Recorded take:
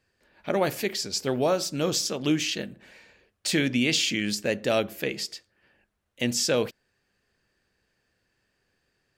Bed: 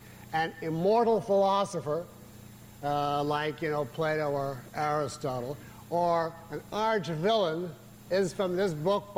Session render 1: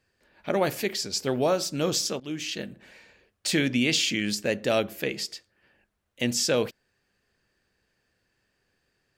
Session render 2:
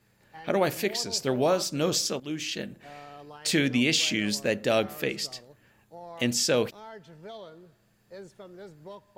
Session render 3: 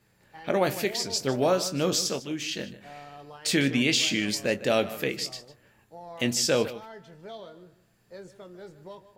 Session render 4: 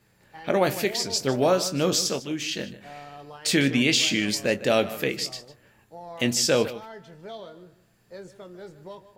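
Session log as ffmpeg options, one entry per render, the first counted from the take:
-filter_complex "[0:a]asplit=2[s0][s1];[s0]atrim=end=2.2,asetpts=PTS-STARTPTS,afade=t=out:st=2.196:d=0.004:c=hsin:silence=0.11885[s2];[s1]atrim=start=2.2,asetpts=PTS-STARTPTS,afade=t=in:d=0.5:silence=0.11885[s3];[s2][s3]concat=n=2:v=0:a=1"
-filter_complex "[1:a]volume=0.141[s0];[0:a][s0]amix=inputs=2:normalize=0"
-filter_complex "[0:a]asplit=2[s0][s1];[s1]adelay=22,volume=0.282[s2];[s0][s2]amix=inputs=2:normalize=0,asplit=2[s3][s4];[s4]adelay=151.6,volume=0.178,highshelf=f=4000:g=-3.41[s5];[s3][s5]amix=inputs=2:normalize=0"
-af "volume=1.33"

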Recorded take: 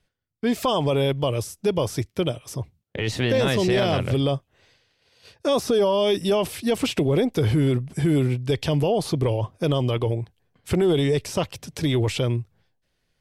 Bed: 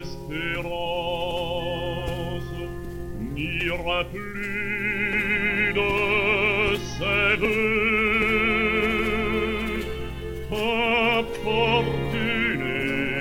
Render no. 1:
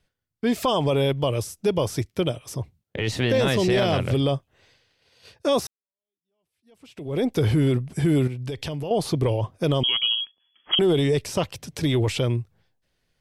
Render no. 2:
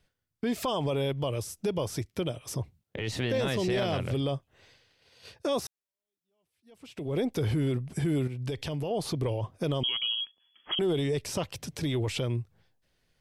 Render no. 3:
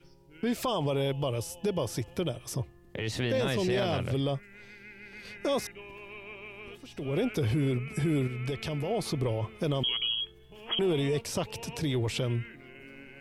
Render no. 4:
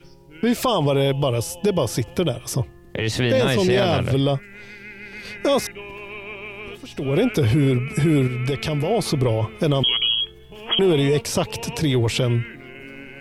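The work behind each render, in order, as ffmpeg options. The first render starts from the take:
-filter_complex "[0:a]asettb=1/sr,asplit=3[s0][s1][s2];[s0]atrim=end=8.274[s3];[s1]atrim=start=8.27:end=8.91,asetpts=PTS-STARTPTS,afade=t=in:d=0.004:c=qsin,afade=t=out:st=0.636:d=0.004:c=qsin,acompressor=threshold=0.0447:ratio=6:attack=3.2:release=140:knee=1:detection=peak[s4];[s2]atrim=start=8.906[s5];[s3][s4]acrossfade=d=0.004:c1=hsin:c2=qsin[s6];[s6][s5]acrossfade=d=0.004:c1=qsin:c2=hsin,asettb=1/sr,asplit=3[s7][s8][s9];[s7]atrim=end=9.834[s10];[s8]atrim=start=9.83:end=10.79,asetpts=PTS-STARTPTS,afade=t=in:d=0.004:c=qsin,afade=t=out:st=0.956:d=0.004:c=qsin,lowpass=f=2900:t=q:w=0.5098,lowpass=f=2900:t=q:w=0.6013,lowpass=f=2900:t=q:w=0.9,lowpass=f=2900:t=q:w=2.563,afreqshift=-3400[s11];[s9]atrim=start=10.786[s12];[s10][s11]acrossfade=d=0.004:c1=hsin:c2=qsin[s13];[s13][s12]acrossfade=d=0.004:c1=qsin:c2=hsin,asplit=2[s14][s15];[s14]atrim=end=5.67,asetpts=PTS-STARTPTS,afade=t=out:st=5.666:d=0.004:c=hsin[s16];[s15]atrim=start=5.67,asetpts=PTS-STARTPTS,afade=t=in:d=1.58:c=exp[s17];[s16][s17]concat=n=2:v=0:a=1"
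-af "acompressor=threshold=0.0224:ratio=1.5,alimiter=limit=0.0891:level=0:latency=1:release=108"
-filter_complex "[1:a]volume=0.0668[s0];[0:a][s0]amix=inputs=2:normalize=0"
-af "volume=3.16"

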